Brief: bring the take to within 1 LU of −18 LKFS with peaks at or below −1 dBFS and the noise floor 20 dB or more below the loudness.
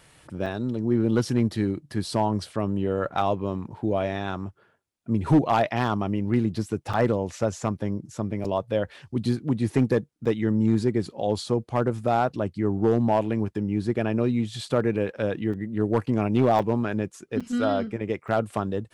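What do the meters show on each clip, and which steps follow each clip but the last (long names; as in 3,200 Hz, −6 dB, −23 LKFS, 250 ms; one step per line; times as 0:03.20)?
share of clipped samples 0.3%; peaks flattened at −12.5 dBFS; number of dropouts 8; longest dropout 5.4 ms; integrated loudness −26.0 LKFS; sample peak −12.5 dBFS; target loudness −18.0 LKFS
→ clipped peaks rebuilt −12.5 dBFS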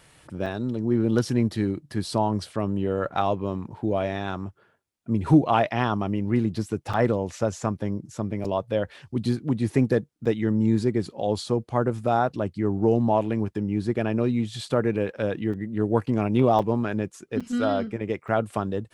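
share of clipped samples 0.0%; number of dropouts 8; longest dropout 5.4 ms
→ repair the gap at 0:00.46/0:06.93/0:08.44/0:10.25/0:15.53/0:16.59/0:17.40/0:18.28, 5.4 ms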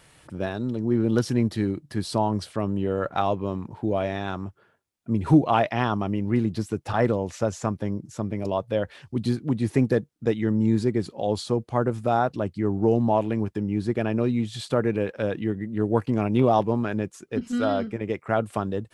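number of dropouts 0; integrated loudness −25.5 LKFS; sample peak −6.0 dBFS; target loudness −18.0 LKFS
→ level +7.5 dB
brickwall limiter −1 dBFS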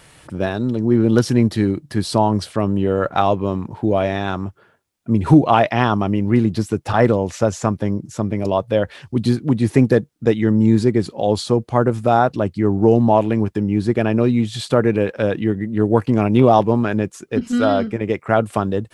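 integrated loudness −18.0 LKFS; sample peak −1.0 dBFS; background noise floor −53 dBFS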